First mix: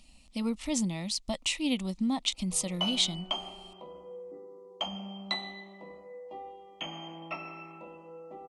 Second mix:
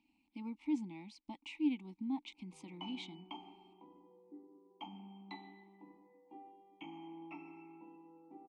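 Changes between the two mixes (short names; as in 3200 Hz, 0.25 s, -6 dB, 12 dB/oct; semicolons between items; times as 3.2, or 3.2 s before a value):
background: add low shelf 410 Hz +6 dB; master: add vowel filter u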